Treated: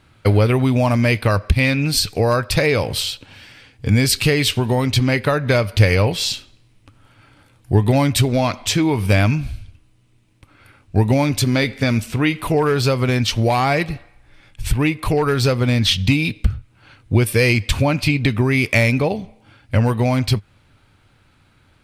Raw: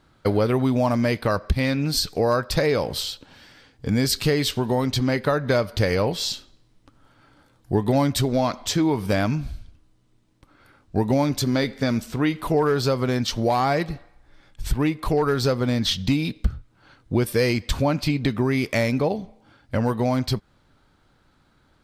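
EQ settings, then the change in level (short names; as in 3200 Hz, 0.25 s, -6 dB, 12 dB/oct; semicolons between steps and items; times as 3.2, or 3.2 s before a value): fifteen-band EQ 100 Hz +10 dB, 2500 Hz +10 dB, 10000 Hz +7 dB; +2.5 dB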